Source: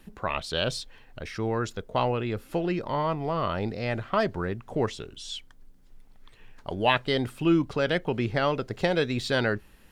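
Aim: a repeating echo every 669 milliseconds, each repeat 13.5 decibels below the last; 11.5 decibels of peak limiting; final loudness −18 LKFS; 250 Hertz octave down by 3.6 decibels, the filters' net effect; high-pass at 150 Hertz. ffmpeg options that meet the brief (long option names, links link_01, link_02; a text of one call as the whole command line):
ffmpeg -i in.wav -af "highpass=150,equalizer=frequency=250:width_type=o:gain=-4.5,alimiter=limit=-18.5dB:level=0:latency=1,aecho=1:1:669|1338:0.211|0.0444,volume=14dB" out.wav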